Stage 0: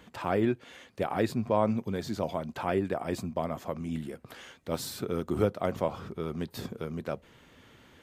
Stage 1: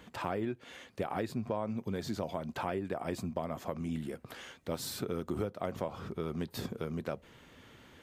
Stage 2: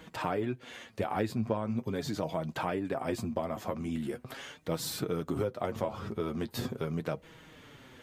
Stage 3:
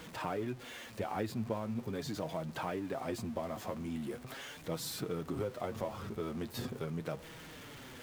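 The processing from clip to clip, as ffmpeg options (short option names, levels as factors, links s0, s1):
-af "acompressor=threshold=0.0282:ratio=6"
-af "flanger=delay=6.2:depth=3.2:regen=35:speed=0.41:shape=sinusoidal,volume=2.24"
-af "aeval=exprs='val(0)+0.5*0.00891*sgn(val(0))':c=same,volume=0.501"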